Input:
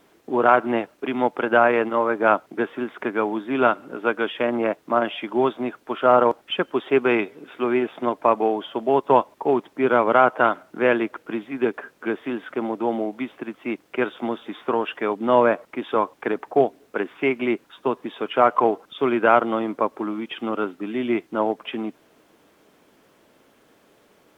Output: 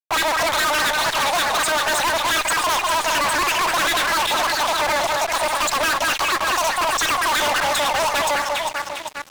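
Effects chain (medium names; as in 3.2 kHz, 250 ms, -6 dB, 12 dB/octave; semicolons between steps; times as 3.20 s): echo whose repeats swap between lows and highs 525 ms, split 840 Hz, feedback 69%, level -9 dB; wide varispeed 2.62×; fuzz box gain 37 dB, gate -45 dBFS; trim -5 dB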